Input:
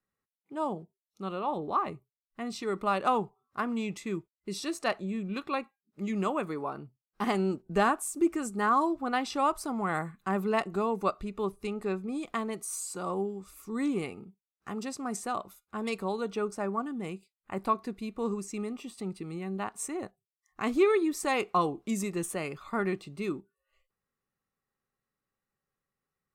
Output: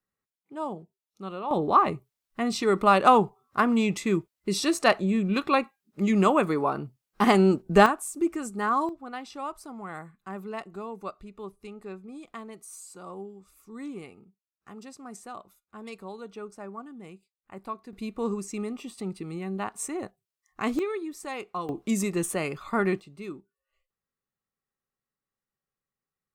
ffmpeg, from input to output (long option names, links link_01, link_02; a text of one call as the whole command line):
ffmpeg -i in.wav -af "asetnsamples=nb_out_samples=441:pad=0,asendcmd='1.51 volume volume 9dB;7.86 volume volume 0dB;8.89 volume volume -8dB;17.93 volume volume 2.5dB;20.79 volume volume -7dB;21.69 volume volume 5dB;23 volume volume -5dB',volume=-1dB" out.wav